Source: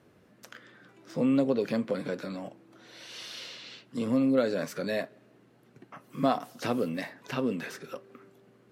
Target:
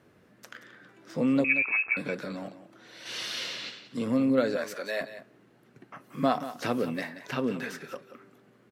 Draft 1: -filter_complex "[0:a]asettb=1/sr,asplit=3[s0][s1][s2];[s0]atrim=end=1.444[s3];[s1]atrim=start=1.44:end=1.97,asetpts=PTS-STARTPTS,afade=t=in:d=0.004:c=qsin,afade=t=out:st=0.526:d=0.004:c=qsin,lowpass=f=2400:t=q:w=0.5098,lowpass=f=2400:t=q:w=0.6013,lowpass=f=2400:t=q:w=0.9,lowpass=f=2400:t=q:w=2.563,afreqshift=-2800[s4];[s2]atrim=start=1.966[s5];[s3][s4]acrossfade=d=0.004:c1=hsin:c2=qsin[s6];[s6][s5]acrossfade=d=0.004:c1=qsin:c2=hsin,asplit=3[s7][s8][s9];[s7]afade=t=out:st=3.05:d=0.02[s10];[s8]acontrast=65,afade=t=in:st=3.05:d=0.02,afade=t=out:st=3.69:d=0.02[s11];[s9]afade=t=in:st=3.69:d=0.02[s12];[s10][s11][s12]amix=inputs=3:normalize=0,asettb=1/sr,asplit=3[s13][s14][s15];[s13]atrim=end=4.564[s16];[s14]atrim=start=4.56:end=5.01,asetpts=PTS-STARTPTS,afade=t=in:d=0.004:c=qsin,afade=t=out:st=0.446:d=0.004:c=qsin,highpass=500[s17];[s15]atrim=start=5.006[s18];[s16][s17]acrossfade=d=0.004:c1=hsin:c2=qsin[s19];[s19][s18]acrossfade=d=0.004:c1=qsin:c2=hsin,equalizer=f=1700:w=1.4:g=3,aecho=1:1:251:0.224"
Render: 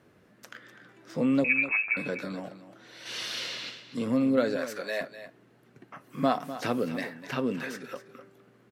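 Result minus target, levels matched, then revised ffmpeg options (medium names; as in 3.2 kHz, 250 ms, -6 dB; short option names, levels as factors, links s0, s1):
echo 71 ms late
-filter_complex "[0:a]asettb=1/sr,asplit=3[s0][s1][s2];[s0]atrim=end=1.444[s3];[s1]atrim=start=1.44:end=1.97,asetpts=PTS-STARTPTS,afade=t=in:d=0.004:c=qsin,afade=t=out:st=0.526:d=0.004:c=qsin,lowpass=f=2400:t=q:w=0.5098,lowpass=f=2400:t=q:w=0.6013,lowpass=f=2400:t=q:w=0.9,lowpass=f=2400:t=q:w=2.563,afreqshift=-2800[s4];[s2]atrim=start=1.966[s5];[s3][s4]acrossfade=d=0.004:c1=hsin:c2=qsin[s6];[s6][s5]acrossfade=d=0.004:c1=qsin:c2=hsin,asplit=3[s7][s8][s9];[s7]afade=t=out:st=3.05:d=0.02[s10];[s8]acontrast=65,afade=t=in:st=3.05:d=0.02,afade=t=out:st=3.69:d=0.02[s11];[s9]afade=t=in:st=3.69:d=0.02[s12];[s10][s11][s12]amix=inputs=3:normalize=0,asettb=1/sr,asplit=3[s13][s14][s15];[s13]atrim=end=4.564[s16];[s14]atrim=start=4.56:end=5.01,asetpts=PTS-STARTPTS,afade=t=in:d=0.004:c=qsin,afade=t=out:st=0.446:d=0.004:c=qsin,highpass=500[s17];[s15]atrim=start=5.006[s18];[s16][s17]acrossfade=d=0.004:c1=hsin:c2=qsin[s19];[s19][s18]acrossfade=d=0.004:c1=qsin:c2=hsin,equalizer=f=1700:w=1.4:g=3,aecho=1:1:180:0.224"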